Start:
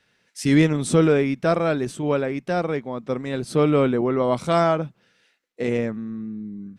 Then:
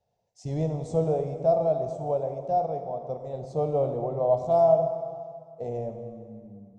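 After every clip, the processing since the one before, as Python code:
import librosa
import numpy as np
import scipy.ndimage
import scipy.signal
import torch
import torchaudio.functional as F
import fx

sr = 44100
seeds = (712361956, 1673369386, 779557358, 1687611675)

y = fx.curve_eq(x, sr, hz=(140.0, 280.0, 720.0, 1500.0, 2600.0, 7000.0, 10000.0), db=(0, -16, 9, -28, -23, -9, -30))
y = fx.rev_plate(y, sr, seeds[0], rt60_s=2.1, hf_ratio=0.8, predelay_ms=0, drr_db=5.5)
y = F.gain(torch.from_numpy(y), -5.5).numpy()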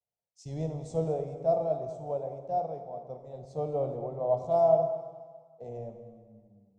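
y = fx.echo_split(x, sr, split_hz=470.0, low_ms=110, high_ms=211, feedback_pct=52, wet_db=-15.0)
y = fx.band_widen(y, sr, depth_pct=40)
y = F.gain(torch.from_numpy(y), -5.5).numpy()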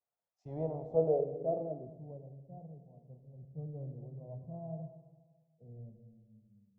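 y = fx.low_shelf(x, sr, hz=240.0, db=-9.0)
y = fx.filter_sweep_lowpass(y, sr, from_hz=1300.0, to_hz=160.0, start_s=0.3, end_s=2.35, q=1.6)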